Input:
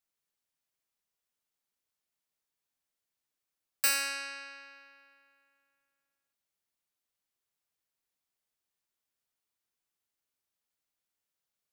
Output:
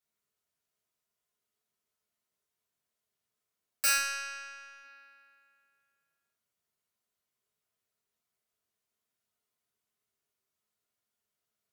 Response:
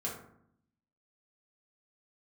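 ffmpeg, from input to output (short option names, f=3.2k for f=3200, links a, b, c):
-filter_complex "[0:a]asplit=3[a][b][c];[a]afade=t=out:st=3.96:d=0.02[d];[b]aeval=exprs='if(lt(val(0),0),0.447*val(0),val(0))':c=same,afade=t=in:st=3.96:d=0.02,afade=t=out:st=4.83:d=0.02[e];[c]afade=t=in:st=4.83:d=0.02[f];[d][e][f]amix=inputs=3:normalize=0[g];[1:a]atrim=start_sample=2205,atrim=end_sample=3087,asetrate=40572,aresample=44100[h];[g][h]afir=irnorm=-1:irlink=0"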